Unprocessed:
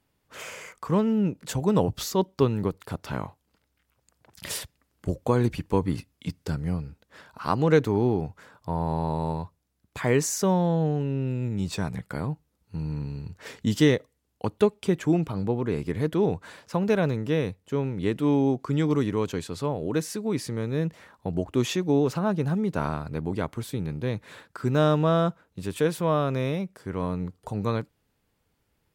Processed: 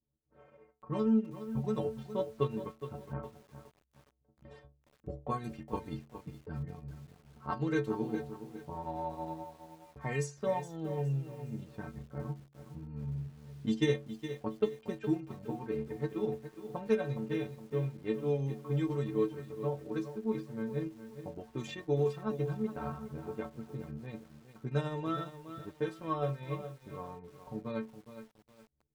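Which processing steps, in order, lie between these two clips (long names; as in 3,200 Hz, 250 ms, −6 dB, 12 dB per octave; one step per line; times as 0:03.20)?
low-pass that shuts in the quiet parts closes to 420 Hz, open at −17.5 dBFS
stiff-string resonator 66 Hz, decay 0.65 s, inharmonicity 0.03
transient designer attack +4 dB, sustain −7 dB
feedback echo at a low word length 415 ms, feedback 35%, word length 9 bits, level −11 dB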